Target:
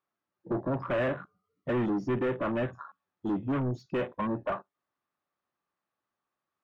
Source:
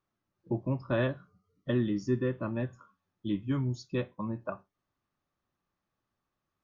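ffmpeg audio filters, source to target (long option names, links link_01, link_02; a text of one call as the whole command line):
ffmpeg -i in.wav -filter_complex "[0:a]asplit=2[link_01][link_02];[link_02]highpass=frequency=720:poles=1,volume=29dB,asoftclip=type=tanh:threshold=-17dB[link_03];[link_01][link_03]amix=inputs=2:normalize=0,lowpass=frequency=1900:poles=1,volume=-6dB,afwtdn=0.0141,volume=-4dB" out.wav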